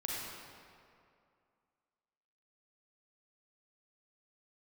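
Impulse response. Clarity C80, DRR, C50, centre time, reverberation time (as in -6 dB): -1.0 dB, -4.5 dB, -3.0 dB, 0.138 s, 2.4 s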